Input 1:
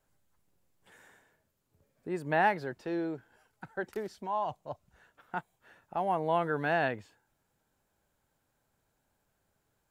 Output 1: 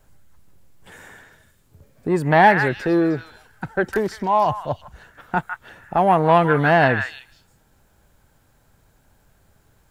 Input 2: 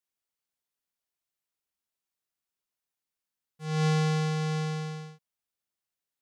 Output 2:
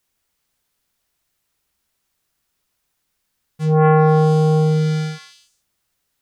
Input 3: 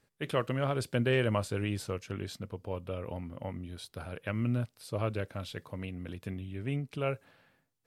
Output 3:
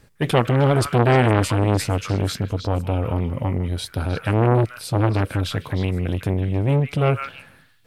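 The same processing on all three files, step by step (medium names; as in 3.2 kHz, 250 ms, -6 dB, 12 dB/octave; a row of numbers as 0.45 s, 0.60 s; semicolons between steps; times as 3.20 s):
bass shelf 130 Hz +11 dB; repeats whose band climbs or falls 155 ms, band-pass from 1.6 kHz, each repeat 1.4 oct, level -4 dB; transformer saturation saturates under 810 Hz; peak normalisation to -1.5 dBFS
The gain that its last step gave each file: +14.5 dB, +16.0 dB, +15.0 dB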